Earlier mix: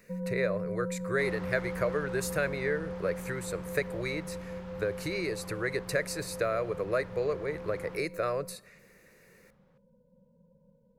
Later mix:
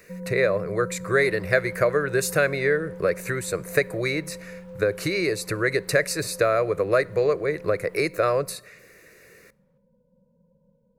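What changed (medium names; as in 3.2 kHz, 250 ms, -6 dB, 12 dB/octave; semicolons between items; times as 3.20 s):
speech +9.0 dB; second sound -8.5 dB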